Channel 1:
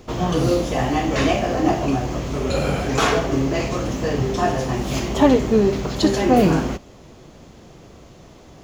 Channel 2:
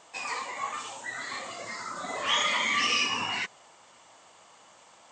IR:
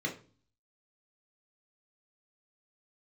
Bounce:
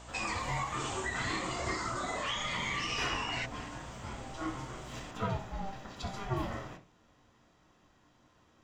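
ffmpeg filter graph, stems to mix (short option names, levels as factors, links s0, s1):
-filter_complex "[0:a]highpass=f=940:p=1,highshelf=f=6400:g=-7.5,aeval=exprs='val(0)*sin(2*PI*390*n/s)':c=same,volume=0.266,asplit=2[s0][s1];[s1]volume=0.447[s2];[1:a]acompressor=threshold=0.0178:ratio=10,aeval=exprs='val(0)+0.002*(sin(2*PI*60*n/s)+sin(2*PI*2*60*n/s)/2+sin(2*PI*3*60*n/s)/3+sin(2*PI*4*60*n/s)/4+sin(2*PI*5*60*n/s)/5)':c=same,volume=1.26[s3];[2:a]atrim=start_sample=2205[s4];[s2][s4]afir=irnorm=-1:irlink=0[s5];[s0][s3][s5]amix=inputs=3:normalize=0"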